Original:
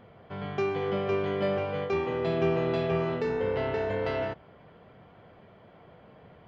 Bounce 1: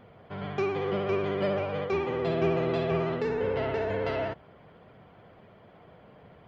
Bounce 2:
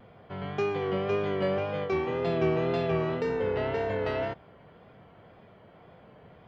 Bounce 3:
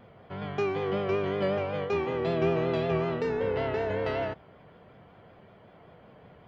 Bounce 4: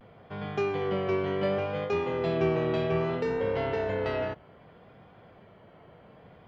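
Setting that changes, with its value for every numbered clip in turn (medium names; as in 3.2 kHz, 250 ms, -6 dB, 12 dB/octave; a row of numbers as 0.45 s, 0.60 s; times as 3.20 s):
vibrato, rate: 16 Hz, 1.9 Hz, 5.3 Hz, 0.65 Hz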